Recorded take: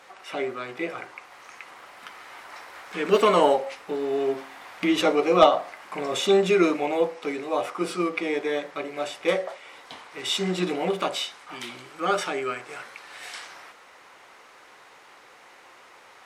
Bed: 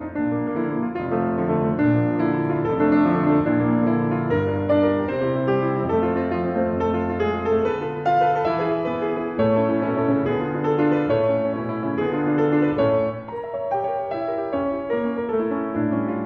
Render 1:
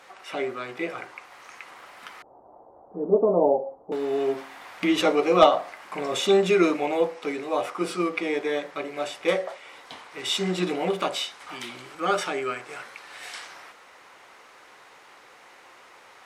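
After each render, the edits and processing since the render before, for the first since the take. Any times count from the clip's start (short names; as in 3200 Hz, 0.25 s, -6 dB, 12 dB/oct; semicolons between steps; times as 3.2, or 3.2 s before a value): 2.22–3.92 steep low-pass 790 Hz; 11.4–11.95 three-band squash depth 40%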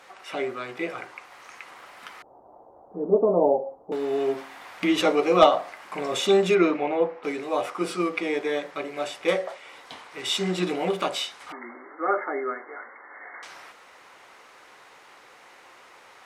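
6.54–7.23 LPF 3800 Hz -> 1700 Hz; 11.52–13.43 brick-wall FIR band-pass 210–2200 Hz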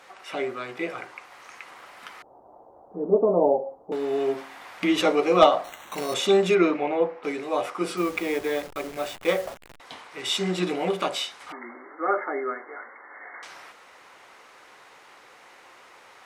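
5.64–6.14 sample-rate reducer 4900 Hz; 7.97–9.8 level-crossing sampler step -36 dBFS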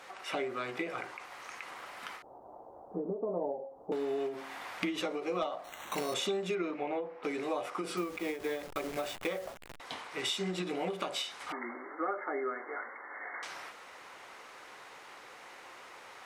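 compressor 8:1, threshold -31 dBFS, peak gain reduction 20 dB; ending taper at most 120 dB/s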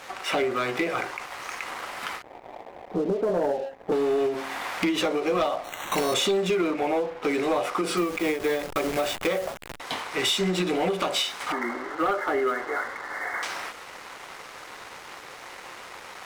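sample leveller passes 3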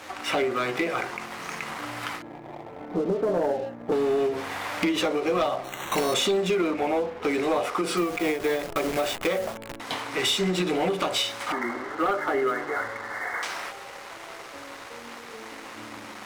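add bed -23 dB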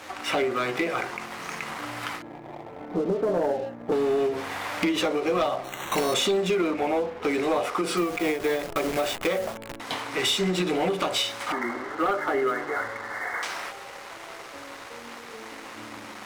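nothing audible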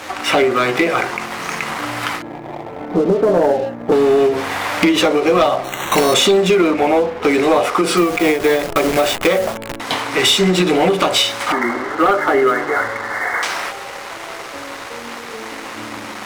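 gain +11 dB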